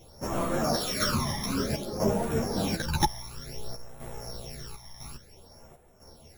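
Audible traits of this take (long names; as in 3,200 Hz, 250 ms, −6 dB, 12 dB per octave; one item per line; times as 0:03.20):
a buzz of ramps at a fixed pitch in blocks of 8 samples
phaser sweep stages 12, 0.56 Hz, lowest notch 450–5,000 Hz
chopped level 1 Hz, depth 60%, duty 75%
a shimmering, thickened sound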